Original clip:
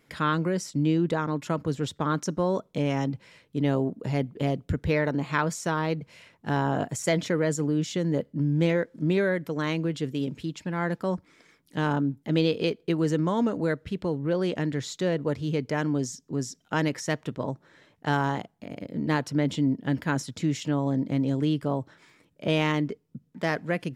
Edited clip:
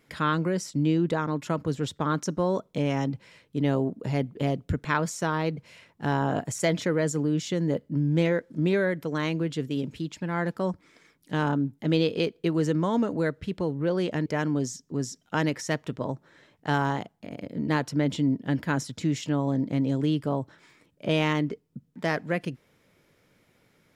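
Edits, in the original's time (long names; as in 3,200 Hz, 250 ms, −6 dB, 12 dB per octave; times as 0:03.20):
0:04.85–0:05.29: remove
0:14.70–0:15.65: remove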